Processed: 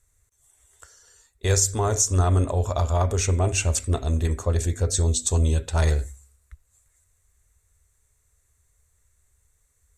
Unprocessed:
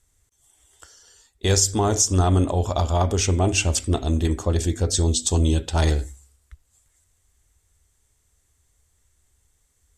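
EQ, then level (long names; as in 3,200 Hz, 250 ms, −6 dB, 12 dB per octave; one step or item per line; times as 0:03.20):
thirty-one-band graphic EQ 200 Hz −11 dB, 315 Hz −11 dB, 800 Hz −6 dB, 3,150 Hz −10 dB, 5,000 Hz −8 dB
0.0 dB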